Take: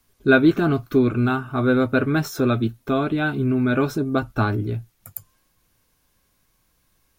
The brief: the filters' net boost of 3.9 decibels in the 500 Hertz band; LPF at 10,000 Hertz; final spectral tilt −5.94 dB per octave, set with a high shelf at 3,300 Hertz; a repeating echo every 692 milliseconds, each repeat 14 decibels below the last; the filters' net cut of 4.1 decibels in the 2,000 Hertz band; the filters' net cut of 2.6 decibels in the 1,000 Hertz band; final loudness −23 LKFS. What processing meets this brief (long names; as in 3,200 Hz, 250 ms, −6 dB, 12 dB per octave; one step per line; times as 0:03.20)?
low-pass filter 10,000 Hz
parametric band 500 Hz +6.5 dB
parametric band 1,000 Hz −4.5 dB
parametric band 2,000 Hz −5.5 dB
high-shelf EQ 3,300 Hz +3.5 dB
repeating echo 692 ms, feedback 20%, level −14 dB
level −4 dB